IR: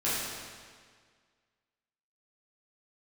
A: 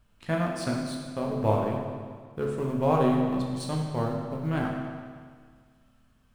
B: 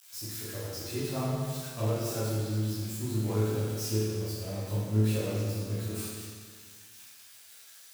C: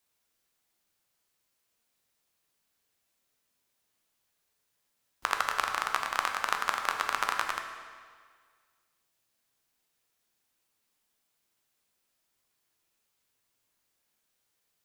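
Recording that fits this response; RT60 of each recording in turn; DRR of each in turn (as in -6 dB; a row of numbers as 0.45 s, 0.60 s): B; 1.8 s, 1.8 s, 1.8 s; -1.5 dB, -11.5 dB, 3.5 dB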